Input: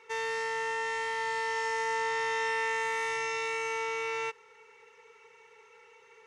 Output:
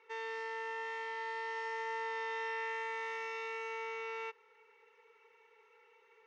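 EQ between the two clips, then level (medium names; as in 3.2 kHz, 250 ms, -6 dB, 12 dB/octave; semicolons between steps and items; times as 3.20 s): three-band isolator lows -21 dB, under 200 Hz, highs -21 dB, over 6.2 kHz; treble shelf 7.1 kHz -10.5 dB; -7.5 dB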